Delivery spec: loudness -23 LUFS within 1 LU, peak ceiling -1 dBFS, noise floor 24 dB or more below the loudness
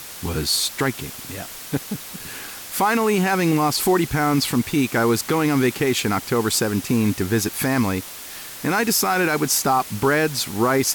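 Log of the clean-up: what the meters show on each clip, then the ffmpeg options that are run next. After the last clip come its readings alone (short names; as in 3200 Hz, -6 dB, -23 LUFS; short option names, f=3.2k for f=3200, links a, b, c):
noise floor -36 dBFS; noise floor target -45 dBFS; loudness -20.5 LUFS; peak -8.5 dBFS; loudness target -23.0 LUFS
-> -af "afftdn=nr=9:nf=-36"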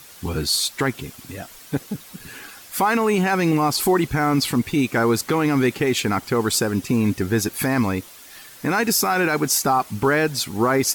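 noise floor -44 dBFS; noise floor target -45 dBFS
-> -af "afftdn=nr=6:nf=-44"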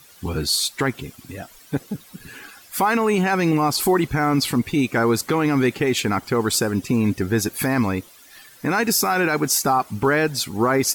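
noise floor -48 dBFS; loudness -20.5 LUFS; peak -9.0 dBFS; loudness target -23.0 LUFS
-> -af "volume=-2.5dB"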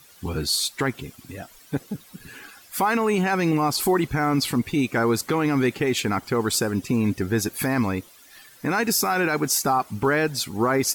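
loudness -23.0 LUFS; peak -11.5 dBFS; noise floor -51 dBFS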